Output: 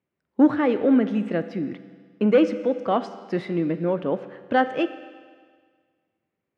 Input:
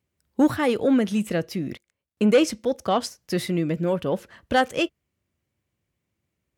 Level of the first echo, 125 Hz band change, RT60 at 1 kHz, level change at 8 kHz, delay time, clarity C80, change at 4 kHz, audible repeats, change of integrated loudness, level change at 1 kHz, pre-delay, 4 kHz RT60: none, -2.5 dB, 1.7 s, under -20 dB, none, 13.0 dB, -8.5 dB, none, +0.5 dB, +0.5 dB, 10 ms, 1.7 s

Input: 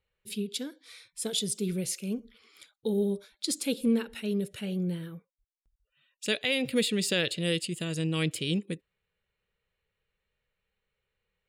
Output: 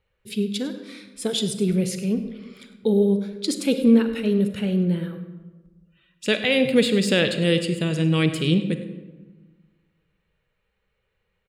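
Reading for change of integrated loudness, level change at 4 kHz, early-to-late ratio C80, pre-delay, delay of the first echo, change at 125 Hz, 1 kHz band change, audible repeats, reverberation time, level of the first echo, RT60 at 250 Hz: +8.5 dB, +5.0 dB, 11.0 dB, 32 ms, 0.101 s, +10.0 dB, +9.0 dB, 1, 1.3 s, -16.0 dB, 1.7 s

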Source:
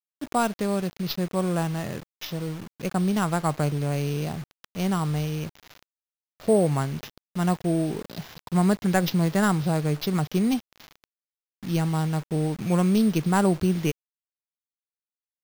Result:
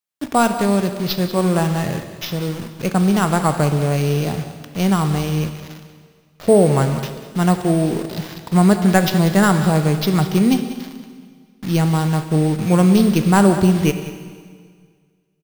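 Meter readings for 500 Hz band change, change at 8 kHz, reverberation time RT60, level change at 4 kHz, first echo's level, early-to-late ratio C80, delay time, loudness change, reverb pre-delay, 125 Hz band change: +8.5 dB, +8.0 dB, 1.8 s, +8.5 dB, -14.5 dB, 9.5 dB, 0.189 s, +8.0 dB, 13 ms, +8.0 dB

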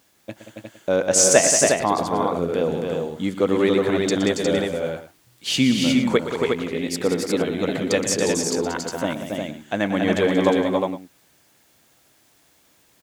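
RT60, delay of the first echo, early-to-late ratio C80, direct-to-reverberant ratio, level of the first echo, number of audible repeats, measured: none, 0.119 s, none, none, -12.0 dB, 5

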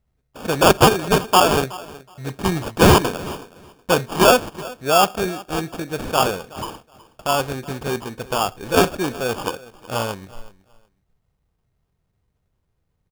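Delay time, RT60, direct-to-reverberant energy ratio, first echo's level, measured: 0.371 s, none, none, -20.0 dB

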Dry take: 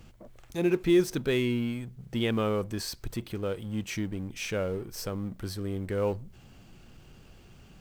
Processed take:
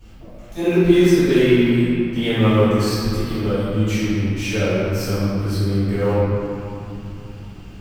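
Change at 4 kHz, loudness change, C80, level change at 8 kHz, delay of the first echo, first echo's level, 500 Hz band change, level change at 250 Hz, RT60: +10.0 dB, +12.0 dB, -2.5 dB, +7.5 dB, none, none, +11.5 dB, +12.5 dB, 2.9 s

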